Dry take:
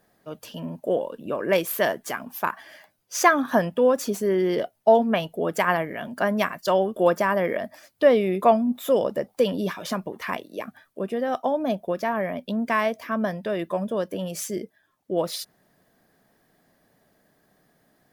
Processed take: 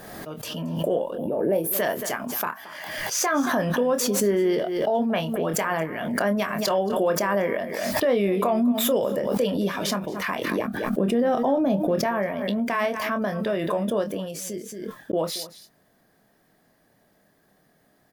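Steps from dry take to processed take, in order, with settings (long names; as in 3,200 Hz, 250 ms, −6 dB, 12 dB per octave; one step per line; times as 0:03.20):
0:01.16–0:01.72: gain on a spectral selection 940–8,900 Hz −17 dB
0:10.51–0:12.04: low-shelf EQ 420 Hz +11 dB
brickwall limiter −15.5 dBFS, peak gain reduction 11.5 dB
double-tracking delay 25 ms −8 dB
0:14.06–0:15.13: fade out
single-tap delay 225 ms −16.5 dB
background raised ahead of every attack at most 33 dB per second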